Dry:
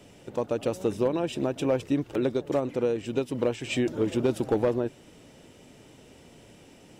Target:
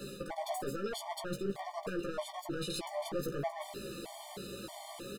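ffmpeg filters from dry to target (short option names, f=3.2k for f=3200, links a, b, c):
-filter_complex "[0:a]flanger=delay=6.8:depth=1.5:regen=45:speed=0.99:shape=sinusoidal,alimiter=level_in=3.5dB:limit=-24dB:level=0:latency=1:release=12,volume=-3.5dB,areverse,acompressor=threshold=-43dB:ratio=10,areverse,aeval=exprs='clip(val(0),-1,0.00398)':c=same,lowshelf=f=390:g=-3,asplit=2[a][b];[b]adelay=20,volume=-4dB[c];[a][c]amix=inputs=2:normalize=0,asetrate=59535,aresample=44100,afftfilt=real='re*gt(sin(2*PI*1.6*pts/sr)*(1-2*mod(floor(b*sr/1024/600),2)),0)':imag='im*gt(sin(2*PI*1.6*pts/sr)*(1-2*mod(floor(b*sr/1024/600),2)),0)':win_size=1024:overlap=0.75,volume=14dB"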